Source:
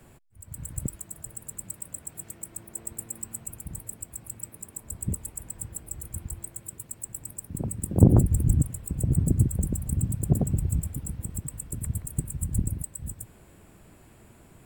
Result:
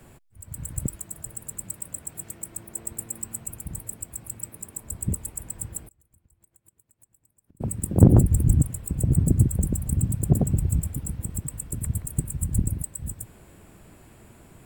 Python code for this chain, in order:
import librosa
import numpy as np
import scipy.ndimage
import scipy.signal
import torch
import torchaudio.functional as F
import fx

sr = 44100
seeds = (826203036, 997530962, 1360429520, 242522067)

p1 = fx.gate_flip(x, sr, shuts_db=-30.0, range_db=-30, at=(5.87, 7.6), fade=0.02)
p2 = np.clip(p1, -10.0 ** (-10.5 / 20.0), 10.0 ** (-10.5 / 20.0))
y = p1 + (p2 * librosa.db_to_amplitude(-8.0))